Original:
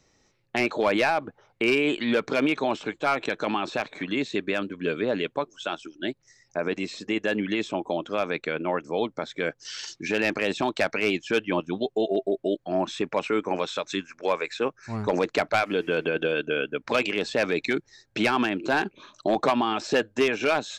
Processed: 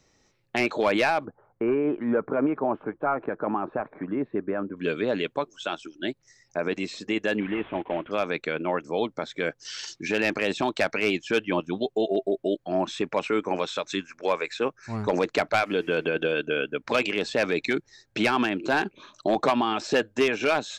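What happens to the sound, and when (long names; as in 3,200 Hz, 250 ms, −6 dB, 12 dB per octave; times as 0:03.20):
0:01.25–0:04.77: low-pass filter 1,400 Hz 24 dB per octave
0:07.40–0:08.11: variable-slope delta modulation 16 kbit/s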